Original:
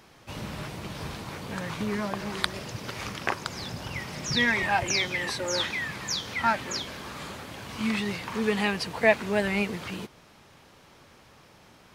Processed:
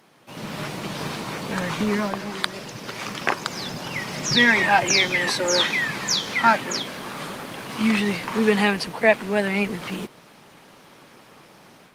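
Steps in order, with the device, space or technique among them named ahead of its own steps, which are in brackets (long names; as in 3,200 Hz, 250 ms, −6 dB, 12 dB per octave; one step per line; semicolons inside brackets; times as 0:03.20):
video call (high-pass filter 140 Hz 24 dB per octave; automatic gain control gain up to 8 dB; Opus 32 kbit/s 48,000 Hz)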